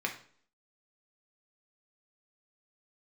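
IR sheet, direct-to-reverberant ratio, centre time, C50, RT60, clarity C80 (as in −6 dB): 1.0 dB, 15 ms, 10.0 dB, 0.55 s, 14.5 dB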